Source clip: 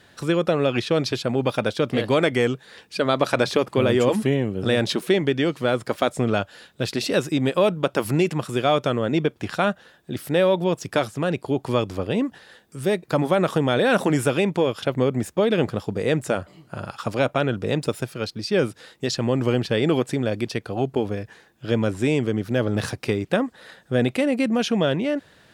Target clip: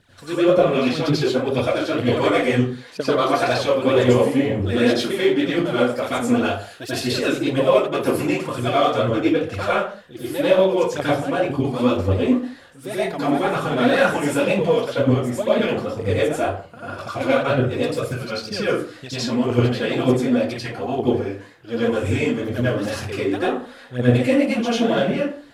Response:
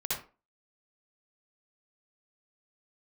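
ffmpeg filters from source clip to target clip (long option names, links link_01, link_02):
-filter_complex "[0:a]asettb=1/sr,asplit=3[link_01][link_02][link_03];[link_01]atrim=end=6.114[link_04];[link_02]atrim=start=6.11:end=7.02,asetpts=PTS-STARTPTS,afade=type=in:duration=0.004:curve=qsin,afade=type=out:start_time=0.906:duration=0.004:curve=qsin,highshelf=frequency=8500:gain=11.5[link_05];[link_03]atrim=start=7.016[link_06];[link_04][link_05]acrossfade=duration=0.004:curve1=hsin:curve2=qsin[link_07];[link_07][link_06]acrossfade=duration=0.004:curve1=qsin:curve2=hsin,aphaser=in_gain=1:out_gain=1:delay=4.4:decay=0.76:speed=2:type=triangular[link_08];[1:a]atrim=start_sample=2205,afade=type=out:start_time=0.25:duration=0.01,atrim=end_sample=11466,asetrate=28665,aresample=44100[link_09];[link_08][link_09]afir=irnorm=-1:irlink=0,volume=-9.5dB"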